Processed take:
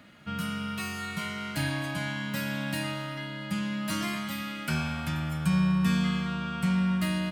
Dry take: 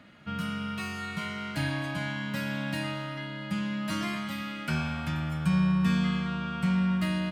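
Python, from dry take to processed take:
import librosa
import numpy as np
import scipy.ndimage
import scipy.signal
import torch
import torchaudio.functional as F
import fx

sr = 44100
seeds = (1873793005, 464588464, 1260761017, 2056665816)

y = fx.high_shelf(x, sr, hz=7300.0, db=11.0)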